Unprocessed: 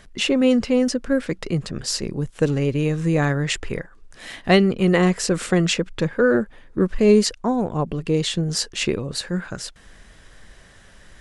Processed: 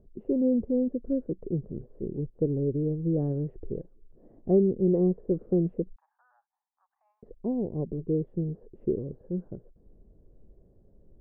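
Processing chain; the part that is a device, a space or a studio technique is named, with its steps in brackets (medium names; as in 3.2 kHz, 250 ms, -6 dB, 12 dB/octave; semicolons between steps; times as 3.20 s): under water (low-pass 520 Hz 24 dB/octave; peaking EQ 380 Hz +5 dB 0.48 oct); 5.96–7.23 s: steep high-pass 790 Hz 96 dB/octave; trim -7.5 dB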